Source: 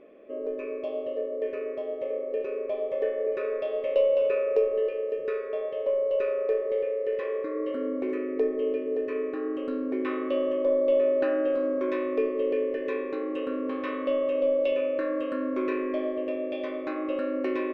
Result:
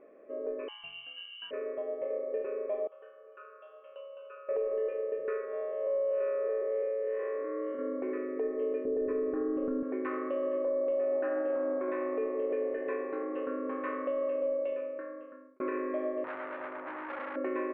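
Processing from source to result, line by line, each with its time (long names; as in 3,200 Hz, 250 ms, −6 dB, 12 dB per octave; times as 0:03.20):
0:00.68–0:01.51: voice inversion scrambler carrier 3,400 Hz
0:02.87–0:04.49: pair of resonant band-passes 2,000 Hz, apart 1.1 octaves
0:05.45–0:07.79: spectrum smeared in time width 132 ms
0:08.85–0:09.83: spectral tilt −4.5 dB per octave
0:10.51–0:13.43: echo with shifted repeats 159 ms, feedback 62%, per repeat +88 Hz, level −24 dB
0:13.97–0:15.60: fade out
0:16.24–0:17.36: saturating transformer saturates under 3,500 Hz
whole clip: low-pass filter 1,900 Hz 24 dB per octave; low-shelf EQ 360 Hz −10 dB; brickwall limiter −24.5 dBFS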